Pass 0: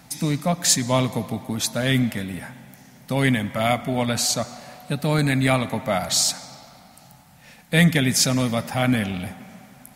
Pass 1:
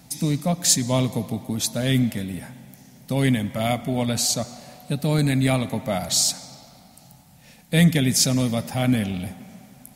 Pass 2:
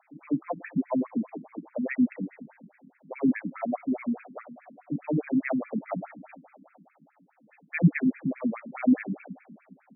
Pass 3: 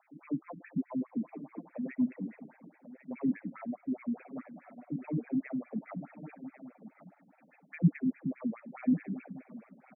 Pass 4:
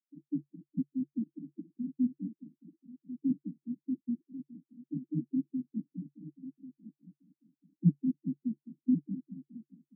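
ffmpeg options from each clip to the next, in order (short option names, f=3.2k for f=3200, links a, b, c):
-af "equalizer=f=1.4k:w=0.7:g=-8.5,volume=1dB"
-af "equalizer=f=290:w=4.1:g=3.5,afftfilt=real='re*between(b*sr/1024,210*pow(1900/210,0.5+0.5*sin(2*PI*4.8*pts/sr))/1.41,210*pow(1900/210,0.5+0.5*sin(2*PI*4.8*pts/sr))*1.41)':imag='im*between(b*sr/1024,210*pow(1900/210,0.5+0.5*sin(2*PI*4.8*pts/sr))/1.41,210*pow(1900/210,0.5+0.5*sin(2*PI*4.8*pts/sr))*1.41)':win_size=1024:overlap=0.75"
-filter_complex "[0:a]acrossover=split=330[a][b];[b]acompressor=threshold=-41dB:ratio=6[c];[a][c]amix=inputs=2:normalize=0,aecho=1:1:1092:0.211,volume=-4.5dB"
-af "asuperpass=centerf=220:order=20:qfactor=1.1"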